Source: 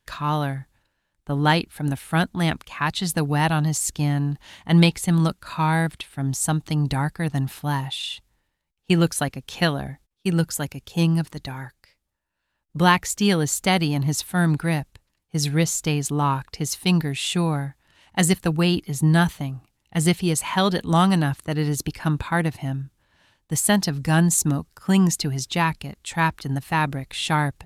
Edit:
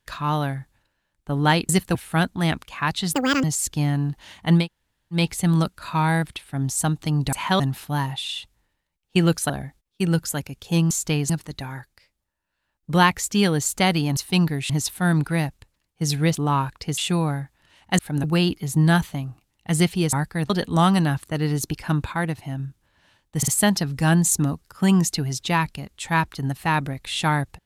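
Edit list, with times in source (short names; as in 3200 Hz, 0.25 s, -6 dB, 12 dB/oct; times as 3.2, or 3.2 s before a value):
1.69–1.94 swap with 18.24–18.5
3.12–3.66 speed 176%
4.83 insert room tone 0.58 s, crossfade 0.16 s
6.97–7.34 swap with 20.39–20.66
9.24–9.75 cut
15.68–16.07 move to 11.16
16.7–17.23 move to 14.03
22.29–22.76 gain -3 dB
23.54 stutter 0.05 s, 3 plays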